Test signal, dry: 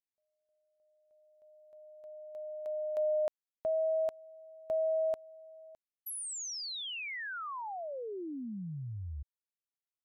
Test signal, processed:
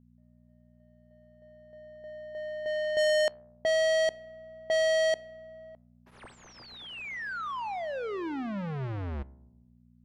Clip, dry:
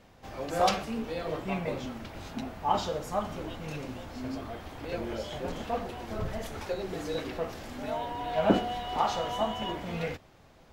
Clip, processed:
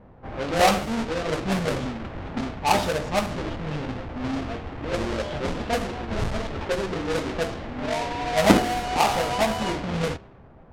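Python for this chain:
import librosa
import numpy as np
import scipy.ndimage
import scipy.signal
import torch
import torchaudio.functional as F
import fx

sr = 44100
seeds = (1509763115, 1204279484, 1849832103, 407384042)

y = fx.halfwave_hold(x, sr)
y = fx.high_shelf(y, sr, hz=11000.0, db=-10.5)
y = fx.comb_fb(y, sr, f0_hz=67.0, decay_s=1.2, harmonics='all', damping=0.6, mix_pct=50)
y = fx.dmg_buzz(y, sr, base_hz=60.0, harmonics=4, level_db=-69.0, tilt_db=0, odd_only=False)
y = fx.env_lowpass(y, sr, base_hz=1100.0, full_db=-29.0)
y = F.gain(torch.from_numpy(y), 8.5).numpy()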